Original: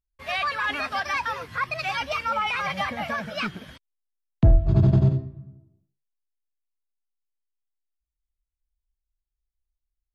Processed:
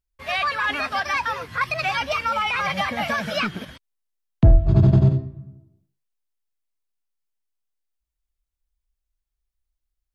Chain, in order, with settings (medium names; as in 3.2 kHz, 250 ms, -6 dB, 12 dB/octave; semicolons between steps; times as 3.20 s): 1.61–3.65 s: three bands compressed up and down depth 100%; trim +3 dB